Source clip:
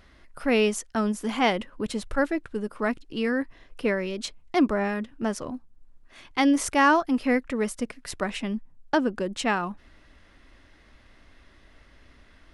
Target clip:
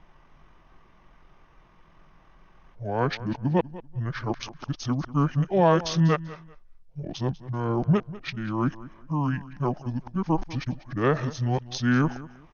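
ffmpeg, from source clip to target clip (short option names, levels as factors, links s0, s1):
-af "areverse,asetrate=25476,aresample=44100,atempo=1.73107,aecho=1:1:194|388:0.133|0.032"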